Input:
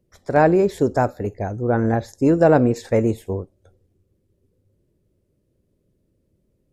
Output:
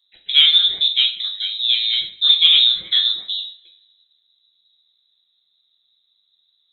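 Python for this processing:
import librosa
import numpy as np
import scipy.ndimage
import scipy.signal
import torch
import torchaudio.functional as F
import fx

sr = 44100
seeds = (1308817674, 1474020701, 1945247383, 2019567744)

y = fx.freq_invert(x, sr, carrier_hz=3900)
y = fx.rev_double_slope(y, sr, seeds[0], early_s=0.38, late_s=1.7, knee_db=-26, drr_db=1.5)
y = fx.quant_float(y, sr, bits=6)
y = F.gain(torch.from_numpy(y), -1.0).numpy()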